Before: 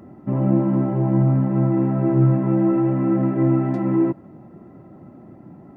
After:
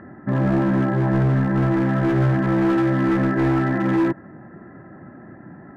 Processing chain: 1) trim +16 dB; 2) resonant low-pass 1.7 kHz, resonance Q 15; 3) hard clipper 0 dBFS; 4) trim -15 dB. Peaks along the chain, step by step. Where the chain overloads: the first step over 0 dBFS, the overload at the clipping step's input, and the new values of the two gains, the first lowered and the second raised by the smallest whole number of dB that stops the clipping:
+8.5 dBFS, +9.0 dBFS, 0.0 dBFS, -15.0 dBFS; step 1, 9.0 dB; step 1 +7 dB, step 4 -6 dB

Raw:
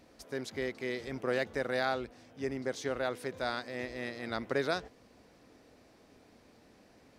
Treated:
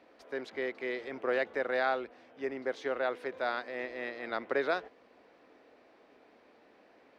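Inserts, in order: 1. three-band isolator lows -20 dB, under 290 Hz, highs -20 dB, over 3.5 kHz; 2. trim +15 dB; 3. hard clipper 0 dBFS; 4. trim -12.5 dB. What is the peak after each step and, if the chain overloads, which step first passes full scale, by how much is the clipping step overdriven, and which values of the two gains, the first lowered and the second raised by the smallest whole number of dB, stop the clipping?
-18.5 dBFS, -3.5 dBFS, -3.5 dBFS, -16.0 dBFS; nothing clips

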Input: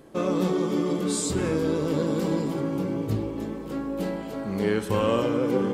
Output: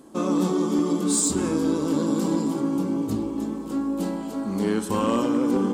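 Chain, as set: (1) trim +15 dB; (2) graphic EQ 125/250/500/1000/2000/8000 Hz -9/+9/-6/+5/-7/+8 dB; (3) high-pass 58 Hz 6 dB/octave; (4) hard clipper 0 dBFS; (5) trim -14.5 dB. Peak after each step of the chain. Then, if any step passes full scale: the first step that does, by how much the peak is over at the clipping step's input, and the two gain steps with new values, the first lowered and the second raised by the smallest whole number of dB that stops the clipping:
+4.5 dBFS, +5.5 dBFS, +5.5 dBFS, 0.0 dBFS, -14.5 dBFS; step 1, 5.5 dB; step 1 +9 dB, step 5 -8.5 dB

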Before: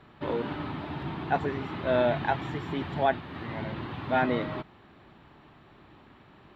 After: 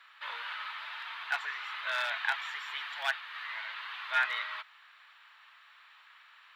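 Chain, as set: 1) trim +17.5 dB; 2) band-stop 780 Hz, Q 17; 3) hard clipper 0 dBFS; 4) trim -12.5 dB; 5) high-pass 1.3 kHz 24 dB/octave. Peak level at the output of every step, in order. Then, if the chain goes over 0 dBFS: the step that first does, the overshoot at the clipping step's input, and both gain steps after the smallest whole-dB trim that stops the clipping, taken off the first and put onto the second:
+5.0 dBFS, +5.5 dBFS, 0.0 dBFS, -12.5 dBFS, -16.0 dBFS; step 1, 5.5 dB; step 1 +11.5 dB, step 4 -6.5 dB

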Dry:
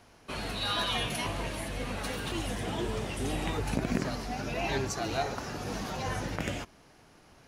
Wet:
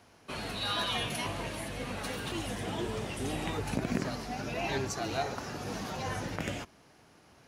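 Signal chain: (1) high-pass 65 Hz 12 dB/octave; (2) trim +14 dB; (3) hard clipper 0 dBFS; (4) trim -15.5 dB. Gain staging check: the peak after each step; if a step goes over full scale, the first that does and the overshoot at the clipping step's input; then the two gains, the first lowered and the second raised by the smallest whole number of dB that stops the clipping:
-15.5 dBFS, -1.5 dBFS, -1.5 dBFS, -17.0 dBFS; nothing clips

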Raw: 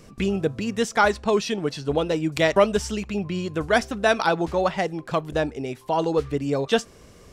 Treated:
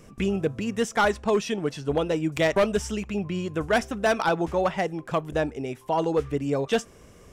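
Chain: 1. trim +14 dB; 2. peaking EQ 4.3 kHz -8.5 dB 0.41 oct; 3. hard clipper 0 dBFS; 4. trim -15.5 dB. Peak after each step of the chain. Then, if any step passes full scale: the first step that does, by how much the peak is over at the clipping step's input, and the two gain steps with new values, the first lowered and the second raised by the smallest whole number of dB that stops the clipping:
+9.0 dBFS, +9.0 dBFS, 0.0 dBFS, -15.5 dBFS; step 1, 9.0 dB; step 1 +5 dB, step 4 -6.5 dB

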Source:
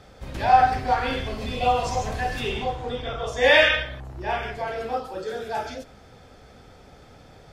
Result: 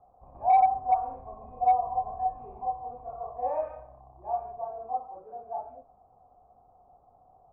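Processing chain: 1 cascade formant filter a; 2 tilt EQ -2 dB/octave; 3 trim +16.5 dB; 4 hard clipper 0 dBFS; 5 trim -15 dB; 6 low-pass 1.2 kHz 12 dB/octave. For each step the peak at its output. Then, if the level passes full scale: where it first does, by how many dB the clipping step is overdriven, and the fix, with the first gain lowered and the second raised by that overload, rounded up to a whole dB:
-9.5 dBFS, -8.5 dBFS, +8.0 dBFS, 0.0 dBFS, -15.0 dBFS, -14.5 dBFS; step 3, 8.0 dB; step 3 +8.5 dB, step 5 -7 dB

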